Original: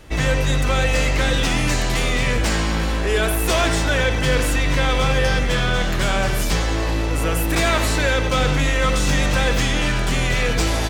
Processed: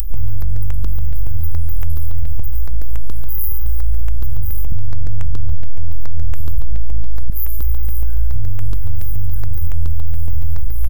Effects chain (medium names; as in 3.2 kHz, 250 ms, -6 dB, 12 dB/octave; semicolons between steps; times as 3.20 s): delay 115 ms -5.5 dB; robot voice 386 Hz; inverse Chebyshev band-stop 200–7800 Hz, stop band 50 dB; 4.72–7.30 s: bass shelf 330 Hz +11.5 dB; upward compressor, threshold -14 dBFS; loudness maximiser +15.5 dB; stepped phaser 7.1 Hz 590–7300 Hz; trim -2.5 dB